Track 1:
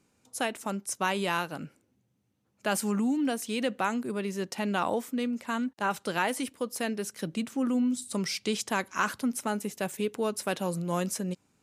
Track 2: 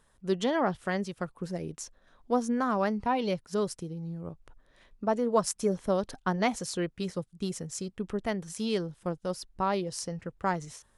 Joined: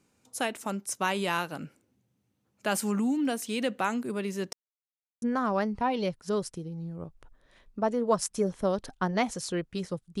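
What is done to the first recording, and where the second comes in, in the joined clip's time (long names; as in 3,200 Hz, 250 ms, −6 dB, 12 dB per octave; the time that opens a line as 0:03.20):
track 1
0:04.53–0:05.22: silence
0:05.22: continue with track 2 from 0:02.47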